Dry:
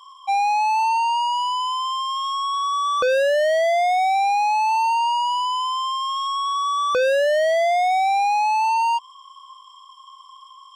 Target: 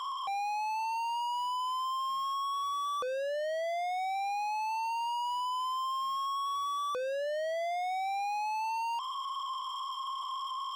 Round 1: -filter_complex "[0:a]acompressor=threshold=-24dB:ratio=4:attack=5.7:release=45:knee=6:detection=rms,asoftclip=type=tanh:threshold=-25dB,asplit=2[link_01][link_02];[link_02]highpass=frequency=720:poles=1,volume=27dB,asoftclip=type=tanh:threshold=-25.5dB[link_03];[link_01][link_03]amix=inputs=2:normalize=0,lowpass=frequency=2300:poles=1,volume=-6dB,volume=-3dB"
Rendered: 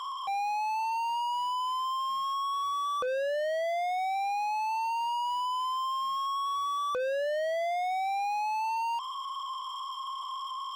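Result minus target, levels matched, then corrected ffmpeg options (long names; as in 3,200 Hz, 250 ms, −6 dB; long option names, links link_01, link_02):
soft clipping: distortion −8 dB
-filter_complex "[0:a]acompressor=threshold=-24dB:ratio=4:attack=5.7:release=45:knee=6:detection=rms,asoftclip=type=tanh:threshold=-34.5dB,asplit=2[link_01][link_02];[link_02]highpass=frequency=720:poles=1,volume=27dB,asoftclip=type=tanh:threshold=-25.5dB[link_03];[link_01][link_03]amix=inputs=2:normalize=0,lowpass=frequency=2300:poles=1,volume=-6dB,volume=-3dB"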